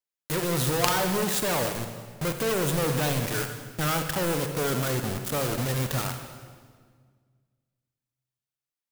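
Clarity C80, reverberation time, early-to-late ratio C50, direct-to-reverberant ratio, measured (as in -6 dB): 8.0 dB, 1.8 s, 6.5 dB, 6.0 dB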